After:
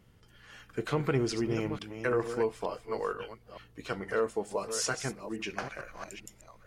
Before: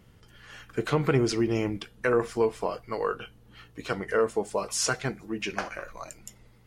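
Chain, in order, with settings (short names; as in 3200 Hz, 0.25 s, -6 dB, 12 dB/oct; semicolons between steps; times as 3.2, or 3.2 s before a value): reverse delay 0.447 s, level -9.5 dB; gain -5 dB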